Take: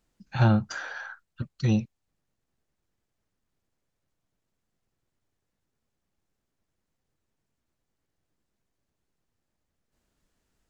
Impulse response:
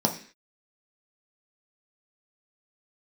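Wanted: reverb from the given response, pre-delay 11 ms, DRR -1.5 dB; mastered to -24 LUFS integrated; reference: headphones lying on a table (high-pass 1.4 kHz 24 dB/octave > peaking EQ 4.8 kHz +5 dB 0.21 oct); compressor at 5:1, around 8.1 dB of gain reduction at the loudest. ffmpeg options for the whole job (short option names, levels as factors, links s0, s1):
-filter_complex "[0:a]acompressor=threshold=0.0562:ratio=5,asplit=2[s0][s1];[1:a]atrim=start_sample=2205,adelay=11[s2];[s1][s2]afir=irnorm=-1:irlink=0,volume=0.316[s3];[s0][s3]amix=inputs=2:normalize=0,highpass=f=1400:w=0.5412,highpass=f=1400:w=1.3066,equalizer=f=4800:t=o:w=0.21:g=5,volume=5.62"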